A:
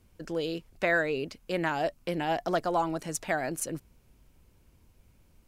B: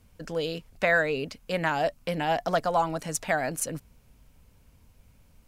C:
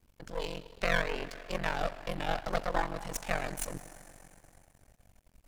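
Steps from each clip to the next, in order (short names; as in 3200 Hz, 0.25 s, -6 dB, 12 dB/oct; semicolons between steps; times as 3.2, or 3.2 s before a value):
bell 350 Hz -14.5 dB 0.2 oct; gain +3.5 dB
Schroeder reverb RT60 3.3 s, combs from 28 ms, DRR 12 dB; half-wave rectifier; ring modulator 23 Hz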